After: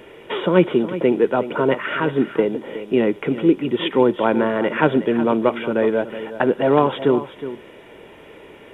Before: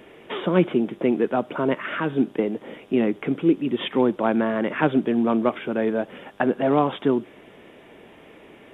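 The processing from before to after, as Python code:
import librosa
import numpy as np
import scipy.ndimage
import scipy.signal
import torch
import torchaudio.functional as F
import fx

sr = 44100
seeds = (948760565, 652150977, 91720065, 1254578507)

p1 = x + 0.34 * np.pad(x, (int(2.1 * sr / 1000.0), 0))[:len(x)]
p2 = p1 + fx.echo_single(p1, sr, ms=366, db=-13.0, dry=0)
y = p2 * 10.0 ** (4.0 / 20.0)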